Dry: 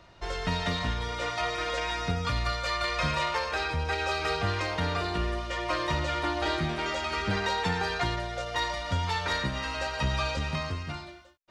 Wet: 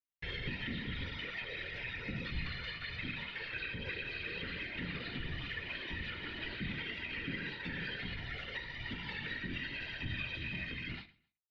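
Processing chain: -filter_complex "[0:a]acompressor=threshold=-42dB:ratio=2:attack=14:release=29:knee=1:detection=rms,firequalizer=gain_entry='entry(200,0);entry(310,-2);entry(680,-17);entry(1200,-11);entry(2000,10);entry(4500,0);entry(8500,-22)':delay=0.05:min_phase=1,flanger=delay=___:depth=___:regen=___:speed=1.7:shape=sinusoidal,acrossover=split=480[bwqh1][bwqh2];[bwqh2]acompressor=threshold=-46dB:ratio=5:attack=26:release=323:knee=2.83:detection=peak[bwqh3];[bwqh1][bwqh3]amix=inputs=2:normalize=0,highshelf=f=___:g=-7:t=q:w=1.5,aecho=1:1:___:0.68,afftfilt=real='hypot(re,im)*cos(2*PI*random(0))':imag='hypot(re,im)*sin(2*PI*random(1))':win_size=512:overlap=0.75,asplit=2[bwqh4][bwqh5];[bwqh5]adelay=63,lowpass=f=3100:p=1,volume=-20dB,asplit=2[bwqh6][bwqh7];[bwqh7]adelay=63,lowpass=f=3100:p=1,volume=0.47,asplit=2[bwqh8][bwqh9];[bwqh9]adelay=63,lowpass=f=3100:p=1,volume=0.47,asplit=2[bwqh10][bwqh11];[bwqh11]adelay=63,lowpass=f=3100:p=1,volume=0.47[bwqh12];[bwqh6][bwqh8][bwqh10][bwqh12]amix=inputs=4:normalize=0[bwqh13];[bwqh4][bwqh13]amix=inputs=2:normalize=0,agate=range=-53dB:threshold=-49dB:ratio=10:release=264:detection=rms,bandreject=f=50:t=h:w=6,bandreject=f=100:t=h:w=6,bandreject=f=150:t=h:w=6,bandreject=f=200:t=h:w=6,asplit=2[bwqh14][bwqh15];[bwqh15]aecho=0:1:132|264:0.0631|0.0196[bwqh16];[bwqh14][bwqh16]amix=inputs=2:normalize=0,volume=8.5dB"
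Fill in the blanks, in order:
3, 3.6, 35, 4700, 4.4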